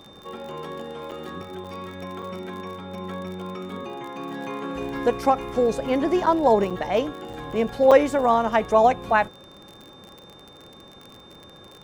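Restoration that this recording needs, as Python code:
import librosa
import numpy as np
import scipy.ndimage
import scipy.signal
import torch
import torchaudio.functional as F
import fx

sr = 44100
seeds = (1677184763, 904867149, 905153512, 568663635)

y = fx.fix_declick_ar(x, sr, threshold=6.5)
y = fx.notch(y, sr, hz=3600.0, q=30.0)
y = fx.fix_interpolate(y, sr, at_s=(1.11, 1.64, 2.22, 6.26, 6.7, 7.33, 7.91), length_ms=5.9)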